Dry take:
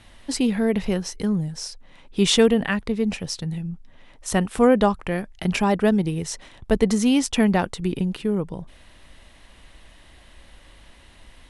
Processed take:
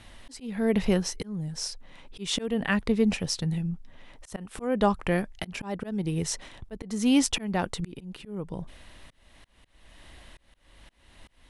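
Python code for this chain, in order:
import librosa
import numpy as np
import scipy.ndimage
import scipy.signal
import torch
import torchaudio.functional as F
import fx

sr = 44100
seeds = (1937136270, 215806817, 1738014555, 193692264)

y = fx.auto_swell(x, sr, attack_ms=409.0)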